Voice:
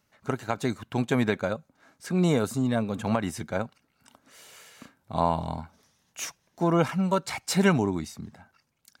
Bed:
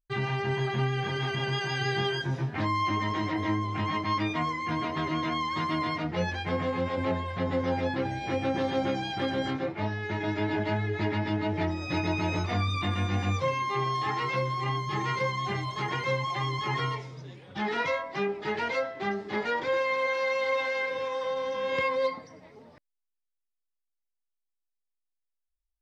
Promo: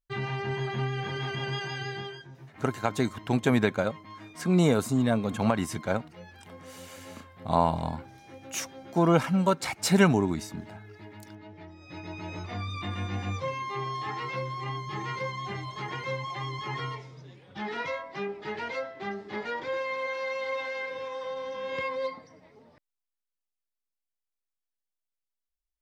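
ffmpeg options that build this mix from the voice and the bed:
ffmpeg -i stem1.wav -i stem2.wav -filter_complex "[0:a]adelay=2350,volume=1dB[link_01];[1:a]volume=11dB,afade=type=out:start_time=1.55:duration=0.73:silence=0.16788,afade=type=in:start_time=11.71:duration=1.28:silence=0.211349[link_02];[link_01][link_02]amix=inputs=2:normalize=0" out.wav

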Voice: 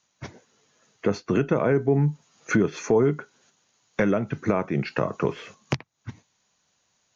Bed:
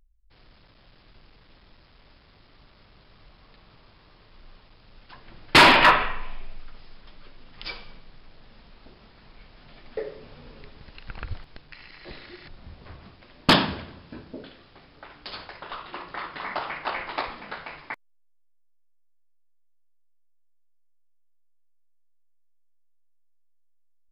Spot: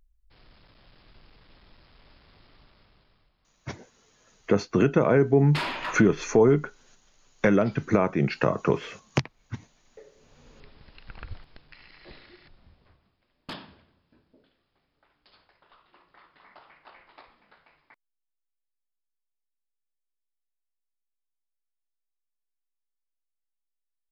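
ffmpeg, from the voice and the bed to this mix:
ffmpeg -i stem1.wav -i stem2.wav -filter_complex "[0:a]adelay=3450,volume=1.5dB[link_01];[1:a]volume=11dB,afade=type=out:start_time=2.46:duration=0.86:silence=0.149624,afade=type=in:start_time=10.14:duration=0.49:silence=0.251189,afade=type=out:start_time=12.01:duration=1.03:silence=0.149624[link_02];[link_01][link_02]amix=inputs=2:normalize=0" out.wav

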